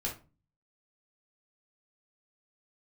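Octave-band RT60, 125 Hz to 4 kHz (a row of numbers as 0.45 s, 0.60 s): 0.65 s, 0.50 s, 0.35 s, 0.30 s, 0.25 s, 0.20 s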